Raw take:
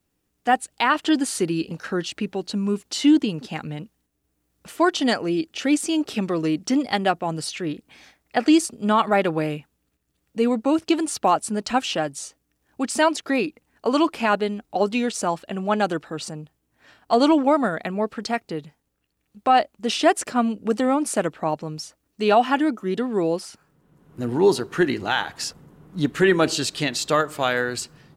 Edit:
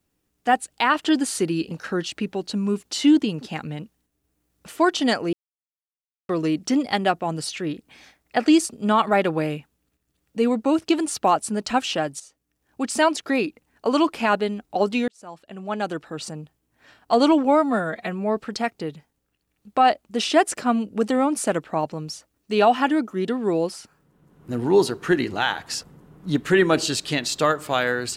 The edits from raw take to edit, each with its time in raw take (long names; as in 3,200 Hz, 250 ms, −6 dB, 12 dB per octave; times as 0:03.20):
0:05.33–0:06.29: silence
0:12.20–0:13.09: fade in equal-power, from −13.5 dB
0:15.08–0:16.38: fade in
0:17.45–0:18.06: time-stretch 1.5×